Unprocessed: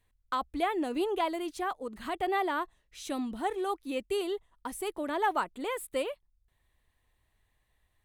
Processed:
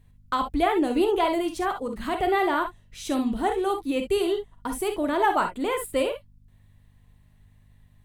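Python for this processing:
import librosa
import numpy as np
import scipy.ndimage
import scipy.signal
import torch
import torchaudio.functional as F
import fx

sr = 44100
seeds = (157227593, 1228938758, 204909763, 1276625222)

y = fx.low_shelf(x, sr, hz=220.0, db=10.0)
y = fx.add_hum(y, sr, base_hz=50, snr_db=31)
y = fx.rev_gated(y, sr, seeds[0], gate_ms=80, shape='rising', drr_db=5.0)
y = y * 10.0 ** (5.0 / 20.0)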